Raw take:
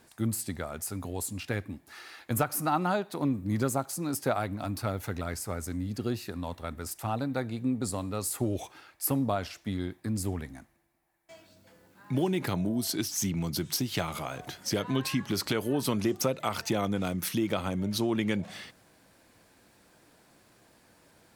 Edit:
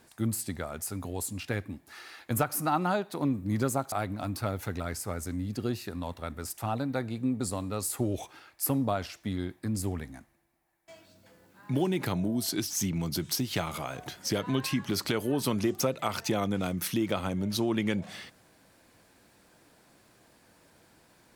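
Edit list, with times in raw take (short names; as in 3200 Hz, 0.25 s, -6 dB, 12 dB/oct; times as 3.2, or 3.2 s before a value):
3.92–4.33 cut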